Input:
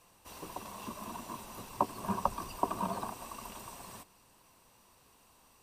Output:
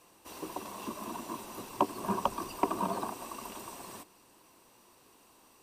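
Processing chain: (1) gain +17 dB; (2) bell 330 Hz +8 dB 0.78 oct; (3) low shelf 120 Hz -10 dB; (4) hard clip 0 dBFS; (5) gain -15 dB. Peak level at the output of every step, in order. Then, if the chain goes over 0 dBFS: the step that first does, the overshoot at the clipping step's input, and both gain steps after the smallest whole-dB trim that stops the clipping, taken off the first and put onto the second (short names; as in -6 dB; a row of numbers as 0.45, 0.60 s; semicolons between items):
+5.5, +6.0, +6.0, 0.0, -15.0 dBFS; step 1, 6.0 dB; step 1 +11 dB, step 5 -9 dB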